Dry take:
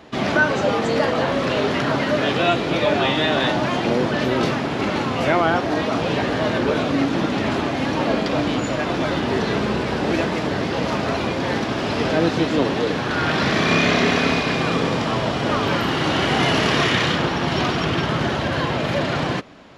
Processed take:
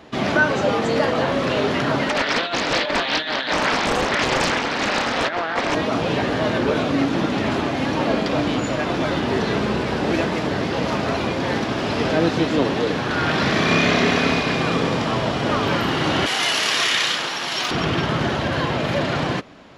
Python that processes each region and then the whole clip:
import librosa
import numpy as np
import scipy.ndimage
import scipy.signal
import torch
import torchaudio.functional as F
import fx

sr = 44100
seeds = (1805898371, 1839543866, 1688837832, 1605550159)

y = fx.chain(x, sr, fx.cabinet(low_hz=240.0, low_slope=12, high_hz=6400.0, hz=(370.0, 1700.0, 3800.0), db=(-9, 9, 9)),
    fx.over_compress(threshold_db=-20.0, ratio=-0.5),
    fx.doppler_dist(depth_ms=0.96), at=(2.09, 5.75))
y = fx.chain(y, sr, fx.highpass(hz=1300.0, slope=6),
    fx.high_shelf(hz=4900.0, db=12.0), at=(16.26, 17.71))